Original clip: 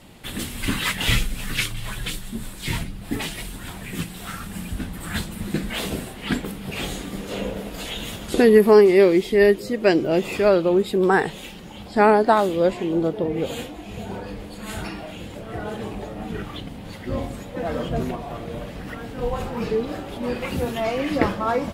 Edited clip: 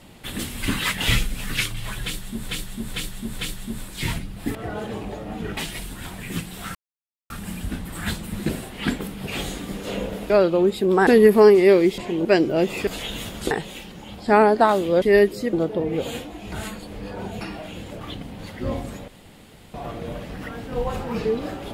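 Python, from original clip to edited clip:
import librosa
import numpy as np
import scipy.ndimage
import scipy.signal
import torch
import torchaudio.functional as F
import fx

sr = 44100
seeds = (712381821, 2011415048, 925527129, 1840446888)

y = fx.edit(x, sr, fx.repeat(start_s=2.04, length_s=0.45, count=4),
    fx.insert_silence(at_s=4.38, length_s=0.55),
    fx.cut(start_s=5.57, length_s=0.36),
    fx.swap(start_s=7.74, length_s=0.64, other_s=10.42, other_length_s=0.77),
    fx.swap(start_s=9.29, length_s=0.51, other_s=12.7, other_length_s=0.27),
    fx.reverse_span(start_s=13.96, length_s=0.89),
    fx.move(start_s=15.45, length_s=1.02, to_s=3.2),
    fx.room_tone_fill(start_s=17.54, length_s=0.66), tone=tone)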